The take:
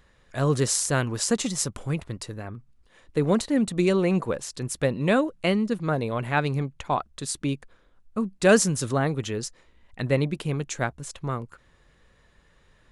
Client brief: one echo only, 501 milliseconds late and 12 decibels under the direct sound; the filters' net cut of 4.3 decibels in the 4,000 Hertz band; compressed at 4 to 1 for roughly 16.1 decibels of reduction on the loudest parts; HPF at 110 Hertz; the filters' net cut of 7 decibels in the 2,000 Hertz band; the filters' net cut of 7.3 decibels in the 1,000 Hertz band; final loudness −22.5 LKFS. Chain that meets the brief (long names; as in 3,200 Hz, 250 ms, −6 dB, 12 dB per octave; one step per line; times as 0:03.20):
high-pass filter 110 Hz
parametric band 1,000 Hz −9 dB
parametric band 2,000 Hz −5 dB
parametric band 4,000 Hz −4 dB
downward compressor 4 to 1, threshold −35 dBFS
single-tap delay 501 ms −12 dB
level +15.5 dB